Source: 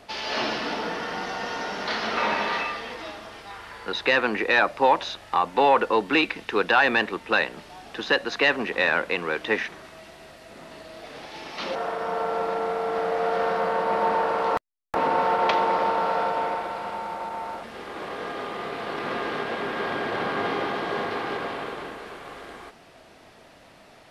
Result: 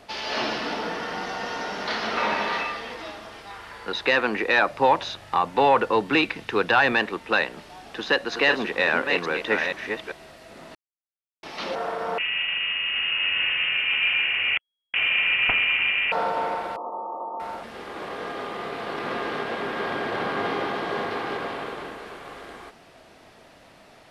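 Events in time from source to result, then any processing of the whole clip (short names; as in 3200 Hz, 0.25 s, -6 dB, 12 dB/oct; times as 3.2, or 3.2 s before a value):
4.7–6.93 bell 120 Hz +10 dB
7.86–10.12 reverse delay 0.466 s, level -5.5 dB
10.75–11.43 mute
12.18–16.12 inverted band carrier 3300 Hz
16.76–17.4 brick-wall FIR band-pass 220–1300 Hz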